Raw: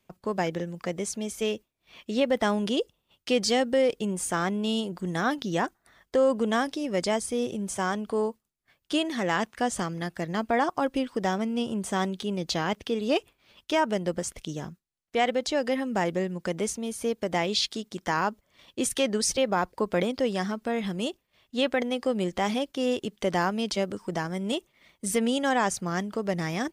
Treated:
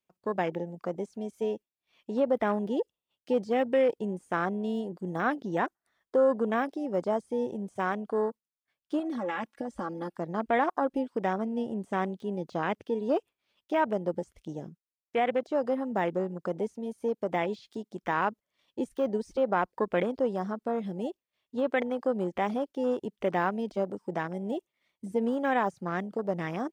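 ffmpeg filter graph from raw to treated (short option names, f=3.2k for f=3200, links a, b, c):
-filter_complex "[0:a]asettb=1/sr,asplit=3[a][b][c];[a]atrim=end=8.994[d];[b]atrim=start=8.99:end=10.17,asetpts=PTS-STARTPTS,afade=t=in:d=0.004:c=qsin,afade=t=out:st=1.176:d=0.004:c=qsin,bandreject=f=6.7k:w=14,aecho=1:1:3.6:0.9,atrim=end_sample=52038,acompressor=threshold=-26dB:ratio=20:attack=3.2:release=140:knee=1:detection=peak[e];[c]atrim=start=10.166[f];[d][e]acrossfade=d=0.004:c1=hsin:c2=qsin[g];[g][f]acrossfade=d=0.004:c1=qsin:c2=hsin,deesser=0.9,afwtdn=0.02,lowshelf=f=140:g=-12"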